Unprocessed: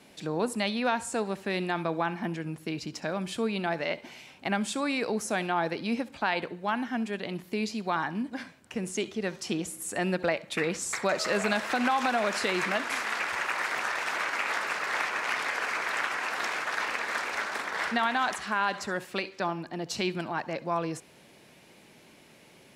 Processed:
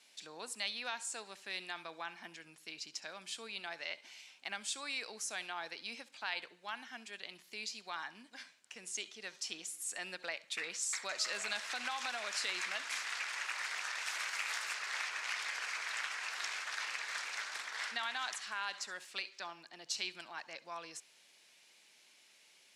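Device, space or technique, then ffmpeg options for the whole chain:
piezo pickup straight into a mixer: -filter_complex "[0:a]lowpass=6300,aderivative,asettb=1/sr,asplit=3[link_01][link_02][link_03];[link_01]atrim=end=14.044[link_04];[link_02]atrim=start=14.04:end=14.74,asetpts=PTS-STARTPTS,afade=type=in:duration=0.004:curve=qsin,afade=type=out:start_time=0.696:duration=0.004:curve=qsin,highshelf=frequency=10000:gain=11[link_05];[link_03]atrim=start=14.736[link_06];[link_04][link_05]acrossfade=duration=0.004:curve1=hsin:curve2=qsin[link_07];[link_07][link_06]acrossfade=duration=0.004:curve1=qsin:curve2=hsin,volume=2.5dB"

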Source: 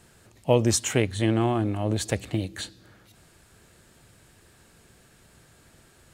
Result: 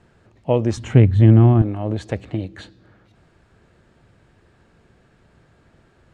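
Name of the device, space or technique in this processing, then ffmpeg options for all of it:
through cloth: -filter_complex "[0:a]asettb=1/sr,asplit=3[link_01][link_02][link_03];[link_01]atrim=end=0.774[link_04];[link_02]atrim=start=0.77:end=1.62,asetpts=PTS-STARTPTS,afade=type=in:duration=0.004:curve=qsin,afade=type=out:start_time=0.846:duration=0.004:curve=qsin,bass=frequency=250:gain=15,treble=frequency=4000:gain=-3[link_05];[link_03]atrim=start=1.616[link_06];[link_04][link_05]acrossfade=duration=0.004:curve1=hsin:curve2=qsin[link_07];[link_07][link_06]acrossfade=duration=0.004:curve1=qsin:curve2=hsin,lowpass=7200,highshelf=frequency=3500:gain=-17,volume=2.5dB"

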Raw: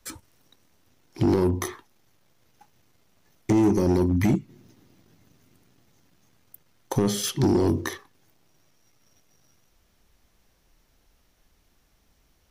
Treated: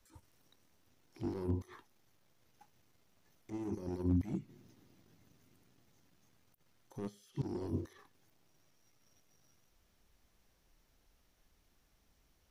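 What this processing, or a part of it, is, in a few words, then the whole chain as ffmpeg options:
de-esser from a sidechain: -filter_complex "[0:a]asplit=2[link_01][link_02];[link_02]highpass=6600,apad=whole_len=551451[link_03];[link_01][link_03]sidechaincompress=threshold=-60dB:ratio=10:attack=1.3:release=38,volume=-7.5dB"

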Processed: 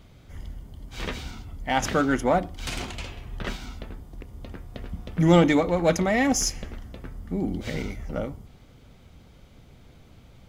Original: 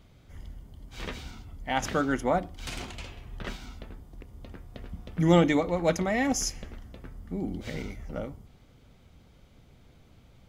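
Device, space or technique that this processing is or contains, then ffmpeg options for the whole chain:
parallel distortion: -filter_complex "[0:a]asplit=2[link_01][link_02];[link_02]asoftclip=type=hard:threshold=-25.5dB,volume=-7dB[link_03];[link_01][link_03]amix=inputs=2:normalize=0,volume=2dB"

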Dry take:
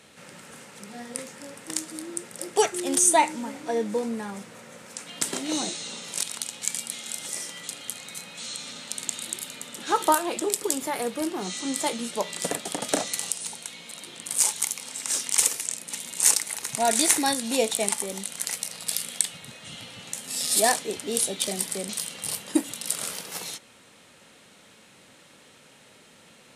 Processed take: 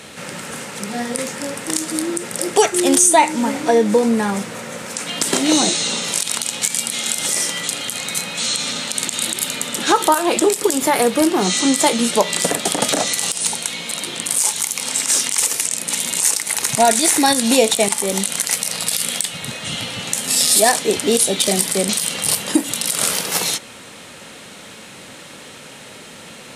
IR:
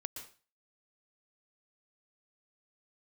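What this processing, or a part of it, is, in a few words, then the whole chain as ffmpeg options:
loud club master: -af "acompressor=threshold=-28dB:ratio=2,asoftclip=type=hard:threshold=-8.5dB,alimiter=level_in=16.5dB:limit=-1dB:release=50:level=0:latency=1,volume=-1dB"

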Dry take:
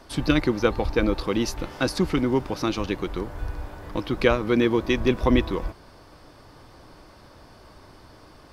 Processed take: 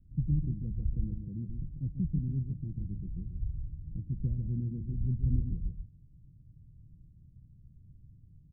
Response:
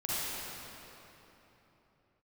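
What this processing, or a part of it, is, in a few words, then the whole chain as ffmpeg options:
the neighbour's flat through the wall: -filter_complex "[0:a]asettb=1/sr,asplit=3[link_01][link_02][link_03];[link_01]atrim=end=1.044[link_04];[link_02]atrim=start=1.04:end=1.49,asetpts=PTS-STARTPTS,afade=type=in:duration=0.004:curve=qsin,afade=type=out:start_time=0.446:duration=0.004:curve=qsin,highpass=84[link_05];[link_03]atrim=start=1.486[link_06];[link_04][link_05]acrossfade=duration=0.004:curve1=hsin:curve2=qsin[link_07];[link_07][link_06]acrossfade=duration=0.004:curve1=qsin:curve2=hsin,lowpass=frequency=150:width=0.5412,lowpass=frequency=150:width=1.3066,equalizer=frequency=150:width_type=o:width=0.97:gain=6,lowshelf=frequency=460:gain=-9,aecho=1:1:142:0.447,volume=4.5dB"

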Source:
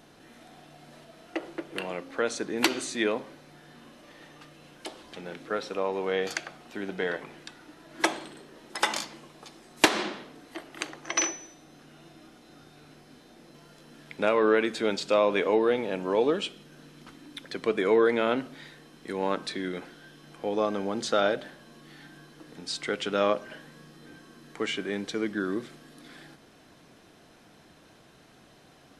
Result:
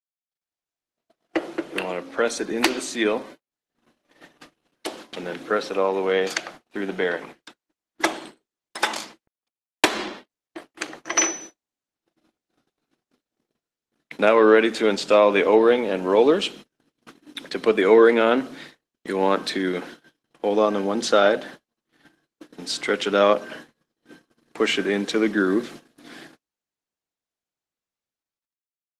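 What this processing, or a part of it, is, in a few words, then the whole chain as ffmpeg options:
video call: -af "highpass=frequency=180:width=0.5412,highpass=frequency=180:width=1.3066,dynaudnorm=framelen=160:gausssize=11:maxgain=11.5dB,agate=range=-52dB:threshold=-37dB:ratio=16:detection=peak,volume=-1.5dB" -ar 48000 -c:a libopus -b:a 16k

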